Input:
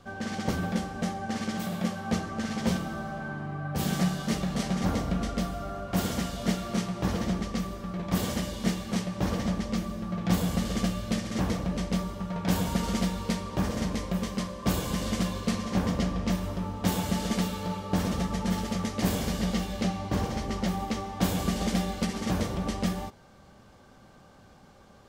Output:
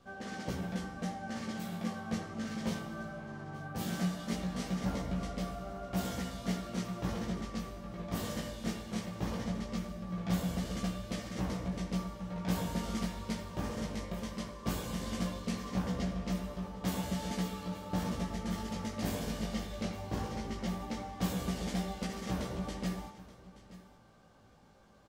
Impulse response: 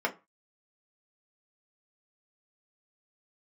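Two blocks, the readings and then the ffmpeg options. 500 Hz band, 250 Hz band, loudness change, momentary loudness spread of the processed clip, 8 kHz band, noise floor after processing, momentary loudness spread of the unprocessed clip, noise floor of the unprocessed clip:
−7.0 dB, −7.5 dB, −7.5 dB, 6 LU, −8.0 dB, −59 dBFS, 5 LU, −54 dBFS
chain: -filter_complex "[0:a]flanger=delay=15.5:depth=3.2:speed=0.18,aecho=1:1:877:0.133,asplit=2[link_01][link_02];[1:a]atrim=start_sample=2205,adelay=79[link_03];[link_02][link_03]afir=irnorm=-1:irlink=0,volume=-19dB[link_04];[link_01][link_04]amix=inputs=2:normalize=0,volume=-5dB"

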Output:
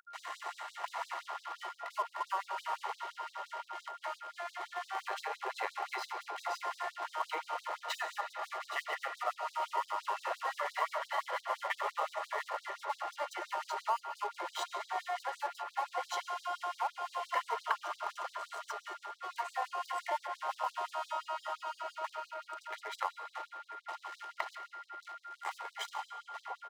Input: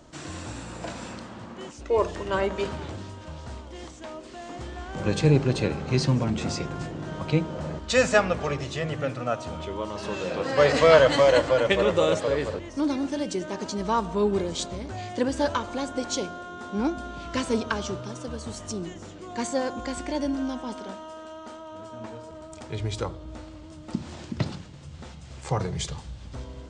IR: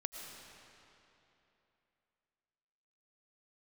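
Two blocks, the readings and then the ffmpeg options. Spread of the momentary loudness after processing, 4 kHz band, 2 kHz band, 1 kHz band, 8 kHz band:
8 LU, −11.0 dB, −9.0 dB, −2.5 dB, −14.0 dB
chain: -filter_complex "[0:a]acrossover=split=550 2300:gain=0.141 1 0.1[link_01][link_02][link_03];[link_01][link_02][link_03]amix=inputs=3:normalize=0,aecho=1:1:1:0.66,adynamicequalizer=threshold=0.00891:dfrequency=830:dqfactor=1.1:tfrequency=830:tqfactor=1.1:attack=5:release=100:ratio=0.375:range=3.5:mode=boostabove:tftype=bell,acompressor=threshold=-34dB:ratio=12,aeval=exprs='sgn(val(0))*max(abs(val(0))-0.00316,0)':channel_layout=same,aeval=exprs='val(0)+0.00251*sin(2*PI*1400*n/s)':channel_layout=same,asplit=2[link_04][link_05];[link_05]adelay=991.3,volume=-9dB,highshelf=frequency=4000:gain=-22.3[link_06];[link_04][link_06]amix=inputs=2:normalize=0,asplit=2[link_07][link_08];[1:a]atrim=start_sample=2205[link_09];[link_08][link_09]afir=irnorm=-1:irlink=0,volume=0.5dB[link_10];[link_07][link_10]amix=inputs=2:normalize=0,afftfilt=real='re*gte(b*sr/1024,320*pow(3700/320,0.5+0.5*sin(2*PI*5.8*pts/sr)))':imag='im*gte(b*sr/1024,320*pow(3700/320,0.5+0.5*sin(2*PI*5.8*pts/sr)))':win_size=1024:overlap=0.75"

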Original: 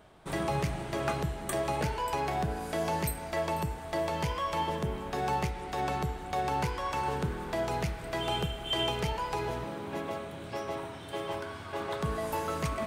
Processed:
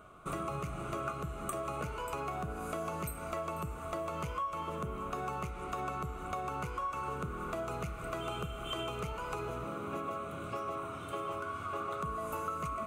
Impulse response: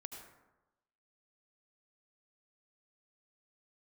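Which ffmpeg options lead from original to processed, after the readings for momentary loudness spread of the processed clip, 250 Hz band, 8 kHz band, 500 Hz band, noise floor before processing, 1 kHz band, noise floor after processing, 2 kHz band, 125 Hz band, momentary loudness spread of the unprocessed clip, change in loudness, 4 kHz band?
2 LU, −6.0 dB, −6.5 dB, −6.0 dB, −43 dBFS, −4.5 dB, −43 dBFS, −6.0 dB, −7.0 dB, 7 LU, −5.5 dB, −11.0 dB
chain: -af "superequalizer=9b=0.562:10b=3.16:11b=0.398:13b=0.501:14b=0.355,acompressor=threshold=-35dB:ratio=5"

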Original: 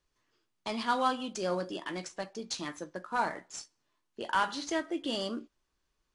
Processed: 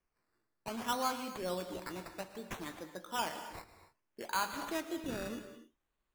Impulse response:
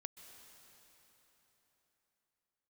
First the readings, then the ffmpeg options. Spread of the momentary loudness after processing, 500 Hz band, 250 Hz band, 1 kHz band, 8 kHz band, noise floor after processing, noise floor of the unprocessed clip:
14 LU, −5.5 dB, −5.0 dB, −5.5 dB, −2.5 dB, −85 dBFS, −81 dBFS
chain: -filter_complex "[0:a]acrusher=samples=11:mix=1:aa=0.000001:lfo=1:lforange=6.6:lforate=0.62[link_01];[1:a]atrim=start_sample=2205,afade=type=out:start_time=0.4:duration=0.01,atrim=end_sample=18081,asetrate=52920,aresample=44100[link_02];[link_01][link_02]afir=irnorm=-1:irlink=0,volume=1.5dB"

